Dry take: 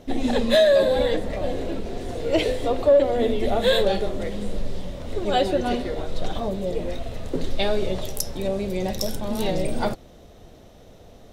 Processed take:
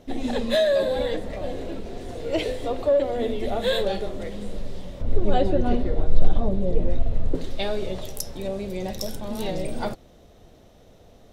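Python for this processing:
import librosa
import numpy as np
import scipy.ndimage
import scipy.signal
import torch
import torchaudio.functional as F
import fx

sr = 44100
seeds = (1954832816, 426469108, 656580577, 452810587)

y = fx.tilt_eq(x, sr, slope=-3.0, at=(5.01, 7.35))
y = y * 10.0 ** (-4.0 / 20.0)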